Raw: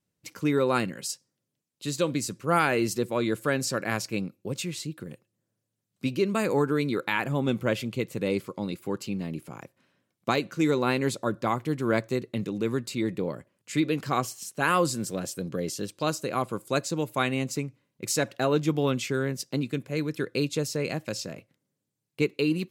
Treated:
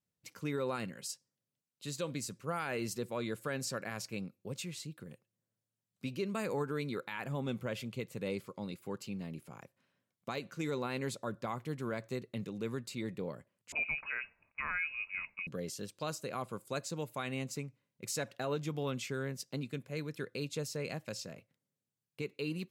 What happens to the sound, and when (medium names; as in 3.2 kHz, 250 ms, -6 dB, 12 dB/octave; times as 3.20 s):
13.72–15.47 s: frequency inversion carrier 2.7 kHz
whole clip: peaking EQ 320 Hz -6 dB 0.42 oct; peak limiter -17.5 dBFS; trim -8.5 dB